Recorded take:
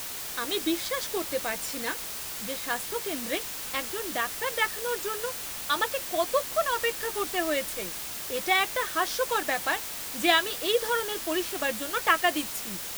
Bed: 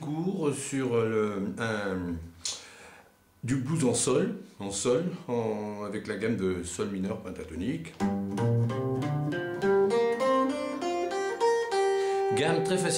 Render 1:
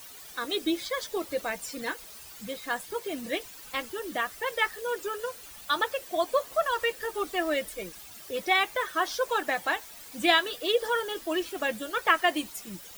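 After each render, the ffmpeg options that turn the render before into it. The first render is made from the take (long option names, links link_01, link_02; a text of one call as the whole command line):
ffmpeg -i in.wav -af "afftdn=noise_reduction=13:noise_floor=-37" out.wav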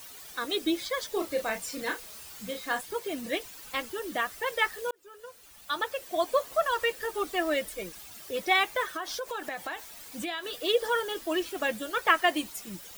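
ffmpeg -i in.wav -filter_complex "[0:a]asettb=1/sr,asplit=3[link_01][link_02][link_03];[link_01]atrim=end=1.114[link_04];[link_02]atrim=start=1.11:end=2.81,asetpts=PTS-STARTPTS,afade=type=in:duration=0.004:curve=qsin,afade=type=out:start_time=1.696:duration=0.004:curve=qsin,asplit=2[link_05][link_06];[link_06]adelay=32,volume=-6.5dB[link_07];[link_05][link_07]amix=inputs=2:normalize=0,atrim=end_sample=74970[link_08];[link_03]atrim=start=2.806[link_09];[link_04][link_08]acrossfade=duration=0.004:curve1=hsin:curve2=qsin[link_10];[link_10][link_09]acrossfade=duration=0.004:curve1=qsin:curve2=hsin,asettb=1/sr,asplit=3[link_11][link_12][link_13];[link_11]atrim=end=8.874[link_14];[link_12]atrim=start=8.87:end=10.59,asetpts=PTS-STARTPTS,afade=type=in:duration=0.004:curve=qsin,afade=type=out:start_time=1.716:duration=0.004:curve=qsin,acompressor=threshold=-31dB:ratio=6:attack=3.2:release=140:knee=1:detection=peak[link_15];[link_13]atrim=start=10.586[link_16];[link_14][link_15]acrossfade=duration=0.004:curve1=hsin:curve2=qsin[link_17];[link_17][link_16]acrossfade=duration=0.004:curve1=qsin:curve2=hsin,asplit=2[link_18][link_19];[link_18]atrim=end=4.91,asetpts=PTS-STARTPTS,afade=type=out:start_time=4.906:duration=0.004:curve=hsin[link_20];[link_19]atrim=start=4.91,asetpts=PTS-STARTPTS,afade=type=in:duration=1.36[link_21];[link_20][link_21]concat=n=2:v=0:a=1" out.wav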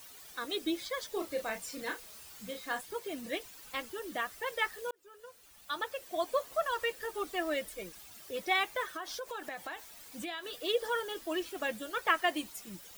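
ffmpeg -i in.wav -af "volume=-5.5dB" out.wav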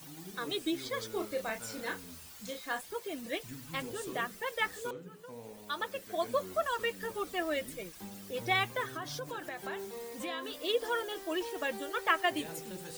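ffmpeg -i in.wav -i bed.wav -filter_complex "[1:a]volume=-18.5dB[link_01];[0:a][link_01]amix=inputs=2:normalize=0" out.wav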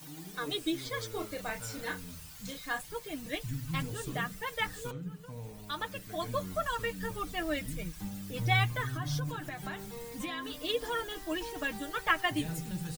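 ffmpeg -i in.wav -af "aecho=1:1:6.6:0.52,asubboost=boost=9:cutoff=140" out.wav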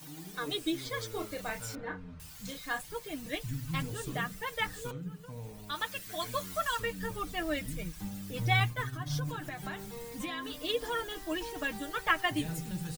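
ffmpeg -i in.wav -filter_complex "[0:a]asettb=1/sr,asplit=3[link_01][link_02][link_03];[link_01]atrim=end=1.754[link_04];[link_02]atrim=start=1.75:end=2.2,asetpts=PTS-STARTPTS,afade=type=in:duration=0.004:curve=qsin,afade=type=out:start_time=0.446:duration=0.004:curve=qsin,lowpass=1500[link_05];[link_03]atrim=start=2.196[link_06];[link_04][link_05]acrossfade=duration=0.004:curve1=hsin:curve2=qsin[link_07];[link_07][link_06]acrossfade=duration=0.004:curve1=qsin:curve2=hsin,asettb=1/sr,asplit=3[link_08][link_09][link_10];[link_08]atrim=end=5.754[link_11];[link_09]atrim=start=5.75:end=6.8,asetpts=PTS-STARTPTS,afade=type=in:duration=0.004:curve=qsin,afade=type=out:start_time=1.046:duration=0.004:curve=qsin,tiltshelf=frequency=970:gain=-6[link_12];[link_10]atrim=start=6.796[link_13];[link_11][link_12]acrossfade=duration=0.004:curve1=hsin:curve2=qsin[link_14];[link_14][link_13]acrossfade=duration=0.004:curve1=qsin:curve2=hsin,asettb=1/sr,asplit=3[link_15][link_16][link_17];[link_15]atrim=end=8.604[link_18];[link_16]atrim=start=8.6:end=9.14,asetpts=PTS-STARTPTS,afade=type=in:duration=0.004:curve=qsin,afade=type=out:start_time=0.536:duration=0.004:curve=qsin,agate=range=-33dB:threshold=-33dB:ratio=3:release=100:detection=peak[link_19];[link_17]atrim=start=9.136[link_20];[link_18][link_19]acrossfade=duration=0.004:curve1=hsin:curve2=qsin[link_21];[link_21][link_20]acrossfade=duration=0.004:curve1=qsin:curve2=hsin" out.wav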